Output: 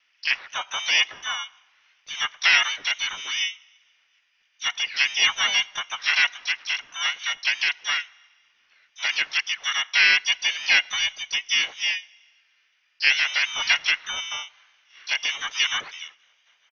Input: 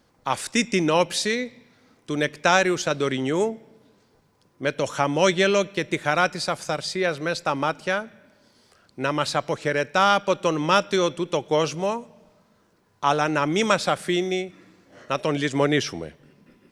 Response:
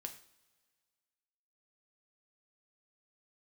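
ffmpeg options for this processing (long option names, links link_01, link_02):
-filter_complex "[0:a]acrossover=split=480 2100:gain=0.0891 1 0.112[link_01][link_02][link_03];[link_01][link_02][link_03]amix=inputs=3:normalize=0,lowpass=frequency=2900:width_type=q:width=0.5098,lowpass=frequency=2900:width_type=q:width=0.6013,lowpass=frequency=2900:width_type=q:width=0.9,lowpass=frequency=2900:width_type=q:width=2.563,afreqshift=-3400,asplit=4[link_04][link_05][link_06][link_07];[link_05]asetrate=33038,aresample=44100,atempo=1.33484,volume=-4dB[link_08];[link_06]asetrate=52444,aresample=44100,atempo=0.840896,volume=-5dB[link_09];[link_07]asetrate=88200,aresample=44100,atempo=0.5,volume=-8dB[link_10];[link_04][link_08][link_09][link_10]amix=inputs=4:normalize=0"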